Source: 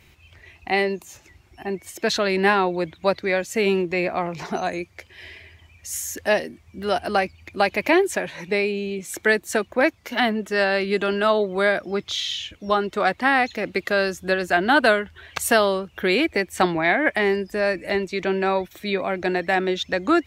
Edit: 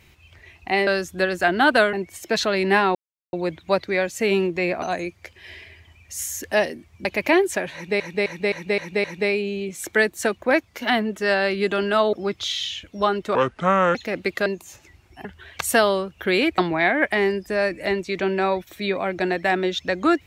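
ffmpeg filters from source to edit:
-filter_complex "[0:a]asplit=17[a][b][c][d][e][f][g][h][i][j][k][l][m][n][o][p][q];[a]atrim=end=0.872[r];[b]atrim=start=13.958:end=15.022[s];[c]atrim=start=1.658:end=2.68,asetpts=PTS-STARTPTS,afade=t=out:st=1.018:d=0.004:c=hsin,apad=pad_dur=0.38[t];[d]atrim=start=2.68:end=4.172,asetpts=PTS-STARTPTS,afade=t=in:d=0.004:c=hsin[u];[e]atrim=start=4.558:end=6.792[v];[f]atrim=start=7.648:end=8.602[w];[g]atrim=start=8.338:end=8.602[x];[h]atrim=start=8.338:end=8.602[y];[i]atrim=start=8.338:end=8.602[z];[j]atrim=start=8.338:end=8.602[aa];[k]atrim=start=8.338:end=11.432[ab];[l]atrim=start=11.808:end=13.034[ac];[m]atrim=start=13.03:end=13.45,asetpts=PTS-STARTPTS,asetrate=30870,aresample=44100[ad];[n]atrim=start=13.446:end=13.962[ae];[o]atrim=start=0.868:end=1.662[af];[p]atrim=start=15.018:end=16.352[ag];[q]atrim=start=16.618[ah];[r][s]acrossfade=d=0.004:c1=hsin:c2=hsin[ai];[t][u]concat=n=2:v=0:a=1[aj];[ai][aj]acrossfade=d=0.004:c1=hsin:c2=hsin[ak];[ak][v]acrossfade=d=0.004:c1=hsin:c2=hsin[al];[al][w]acrossfade=d=0.004:c1=hsin:c2=hsin[am];[am][x]acrossfade=d=0.004:c1=hsin:c2=hsin[an];[an][y]acrossfade=d=0.004:c1=hsin:c2=hsin[ao];[ao][z]acrossfade=d=0.004:c1=hsin:c2=hsin[ap];[ap][aa]acrossfade=d=0.004:c1=hsin:c2=hsin[aq];[aq][ab]acrossfade=d=0.004:c1=hsin:c2=hsin[ar];[ar][ac]acrossfade=d=0.004:c1=hsin:c2=hsin[as];[as][ad]acrossfade=d=0.004:c1=hsin:c2=hsin[at];[at][ae]acrossfade=d=0.004:c1=hsin:c2=hsin[au];[au][af]acrossfade=d=0.004:c1=hsin:c2=hsin[av];[av][ag]acrossfade=d=0.004:c1=hsin:c2=hsin[aw];[aw][ah]acrossfade=d=0.004:c1=hsin:c2=hsin"

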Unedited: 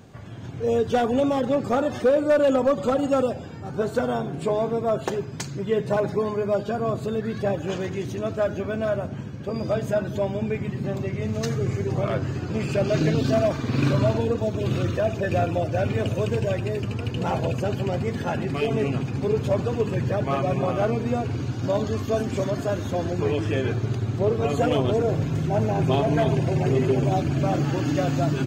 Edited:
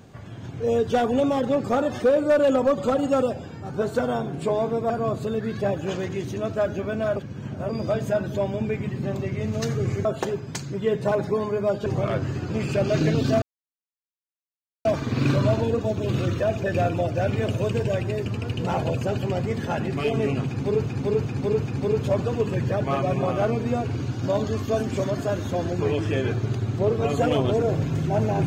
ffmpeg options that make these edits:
-filter_complex "[0:a]asplit=10[a][b][c][d][e][f][g][h][i][j];[a]atrim=end=4.902[k];[b]atrim=start=6.708:end=8.972[l];[c]atrim=start=8.968:end=9.502,asetpts=PTS-STARTPTS,areverse[m];[d]atrim=start=9.498:end=11.862[n];[e]atrim=start=4.898:end=6.712[o];[f]atrim=start=11.858:end=13.42,asetpts=PTS-STARTPTS,afade=t=out:st=1.558:d=0.004:c=hsin,apad=pad_dur=1.43[p];[g]atrim=start=13.42:end=19.432,asetpts=PTS-STARTPTS,afade=t=in:d=0.004:c=hsin[q];[h]atrim=start=19.038:end=19.432[r];[i]atrim=start=19.038:end=19.432[s];[j]atrim=start=19.038[t];[k][l]acrossfade=d=0.004:c1=hsin:c2=hsin[u];[u][m]acrossfade=d=0.004:c1=hsin:c2=hsin[v];[v][n]acrossfade=d=0.004:c1=hsin:c2=hsin[w];[w][o]acrossfade=d=0.004:c1=hsin:c2=hsin[x];[p][q]concat=n=2:v=0:a=1[y];[x][y]acrossfade=d=0.004:c1=hsin:c2=hsin[z];[z][r]acrossfade=d=0.004:c1=hsin:c2=hsin[aa];[aa][s]acrossfade=d=0.004:c1=hsin:c2=hsin[ab];[ab][t]acrossfade=d=0.004:c1=hsin:c2=hsin"

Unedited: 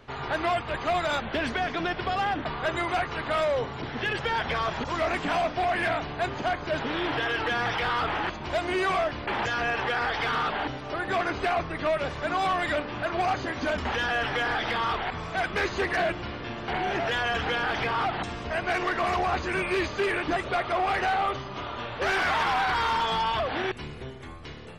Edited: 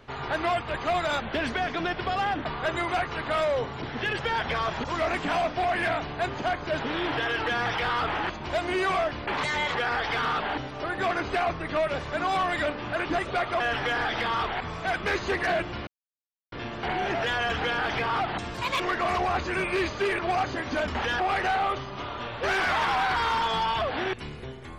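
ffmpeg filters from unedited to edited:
-filter_complex "[0:a]asplit=10[a][b][c][d][e][f][g][h][i][j];[a]atrim=end=9.374[k];[b]atrim=start=9.37:end=9.85,asetpts=PTS-STARTPTS,asetrate=55566,aresample=44100[l];[c]atrim=start=9.846:end=13.092[m];[d]atrim=start=20.168:end=20.782[n];[e]atrim=start=14.098:end=16.37,asetpts=PTS-STARTPTS,afade=t=out:st=2.268:d=0.004:c=hsin,apad=pad_dur=0.65[o];[f]atrim=start=16.37:end=18.394,asetpts=PTS-STARTPTS,afade=t=in:d=0.004:c=hsin[p];[g]atrim=start=18.39:end=18.78,asetpts=PTS-STARTPTS,asetrate=67032,aresample=44100,atrim=end_sample=11315,asetpts=PTS-STARTPTS[q];[h]atrim=start=18.776:end=20.172[r];[i]atrim=start=13.088:end=14.102[s];[j]atrim=start=20.778[t];[k][l]acrossfade=d=0.004:c1=hsin:c2=hsin[u];[u][m]acrossfade=d=0.004:c1=hsin:c2=hsin[v];[v][n]acrossfade=d=0.004:c1=hsin:c2=hsin[w];[o][p]concat=n=2:v=0:a=1[x];[w][x]acrossfade=d=0.004:c1=hsin:c2=hsin[y];[y][q]acrossfade=d=0.004:c1=hsin:c2=hsin[z];[z][r]acrossfade=d=0.004:c1=hsin:c2=hsin[aa];[aa][s]acrossfade=d=0.004:c1=hsin:c2=hsin[ab];[ab][t]acrossfade=d=0.004:c1=hsin:c2=hsin"

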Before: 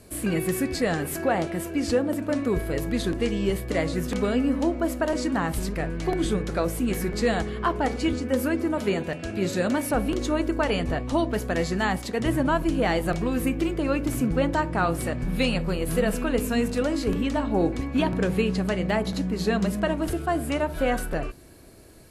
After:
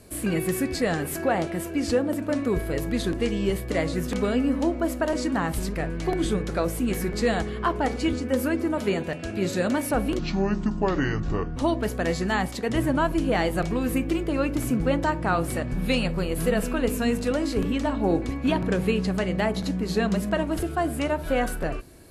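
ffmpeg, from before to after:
-filter_complex "[0:a]asplit=3[a][b][c];[a]atrim=end=10.194[d];[b]atrim=start=10.19:end=11.07,asetpts=PTS-STARTPTS,asetrate=28224,aresample=44100[e];[c]atrim=start=11.066[f];[d][e]acrossfade=d=0.004:c1=hsin:c2=hsin[g];[g][f]acrossfade=d=0.004:c1=hsin:c2=hsin"

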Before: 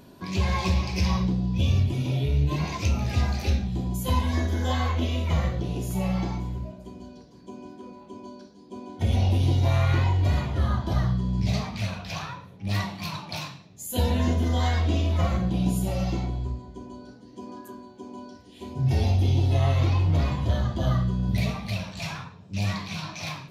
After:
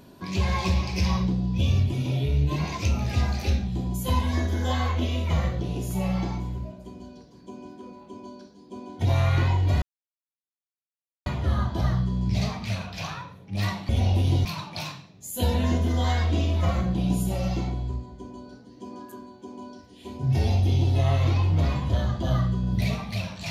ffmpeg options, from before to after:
-filter_complex "[0:a]asplit=5[a][b][c][d][e];[a]atrim=end=9.052[f];[b]atrim=start=9.608:end=10.38,asetpts=PTS-STARTPTS,afade=t=out:st=0.768:d=0.004:c=hsin,apad=pad_dur=1.44[g];[c]atrim=start=10.38:end=13.012,asetpts=PTS-STARTPTS,afade=t=in:d=0.004:c=hsin[h];[d]atrim=start=9.048:end=9.612[i];[e]atrim=start=13.008[j];[g][h]concat=n=2:v=0:a=1[k];[f][k]acrossfade=d=0.004:c1=hsin:c2=hsin[l];[l][i]acrossfade=d=0.004:c1=hsin:c2=hsin[m];[m][j]acrossfade=d=0.004:c1=hsin:c2=hsin"

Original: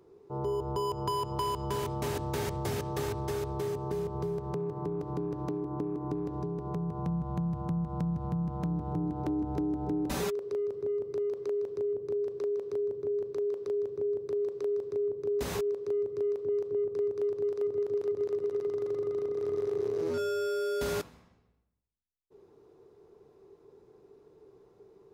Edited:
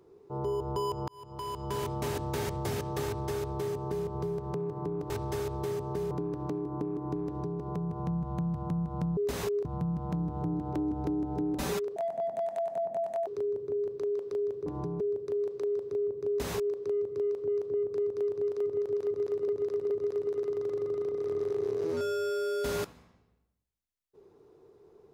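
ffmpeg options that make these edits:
-filter_complex "[0:a]asplit=12[a][b][c][d][e][f][g][h][i][j][k][l];[a]atrim=end=1.08,asetpts=PTS-STARTPTS,afade=t=out:st=1.076:d=0.004:c=hsin[m];[b]atrim=start=1.08:end=5.102,asetpts=PTS-STARTPTS,afade=t=in:d=0.75[n];[c]atrim=start=3.058:end=4.072[o];[d]atrim=start=5.098:end=8.162[p];[e]atrim=start=15.288:end=15.772[q];[f]atrim=start=8.158:end=10.474[r];[g]atrim=start=10.47:end=12.62,asetpts=PTS-STARTPTS,asetrate=72324,aresample=44100,atrim=end_sample=57814,asetpts=PTS-STARTPTS[s];[h]atrim=start=12.616:end=14.012[t];[i]atrim=start=6.248:end=6.592[u];[j]atrim=start=14.008:end=18.492[v];[k]atrim=start=18.068:end=18.492[w];[l]atrim=start=18.068[x];[m][n]concat=n=2:v=0:a=1[y];[y][o]acrossfade=d=0.004:c1=hsin:c2=hsin[z];[z][p]acrossfade=d=0.004:c1=hsin:c2=hsin[aa];[aa][q]acrossfade=d=0.004:c1=hsin:c2=hsin[ab];[ab][r]acrossfade=d=0.004:c1=hsin:c2=hsin[ac];[ac][s]acrossfade=d=0.004:c1=hsin:c2=hsin[ad];[ad][t]acrossfade=d=0.004:c1=hsin:c2=hsin[ae];[ae][u]acrossfade=d=0.004:c1=hsin:c2=hsin[af];[af][v]acrossfade=d=0.004:c1=hsin:c2=hsin[ag];[ag][w]acrossfade=d=0.004:c1=hsin:c2=hsin[ah];[ah][x]acrossfade=d=0.004:c1=hsin:c2=hsin"

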